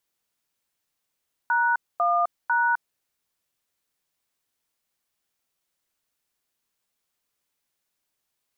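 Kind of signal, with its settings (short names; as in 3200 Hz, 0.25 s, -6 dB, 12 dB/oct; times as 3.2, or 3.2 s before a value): DTMF "#1#", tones 0.258 s, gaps 0.24 s, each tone -21.5 dBFS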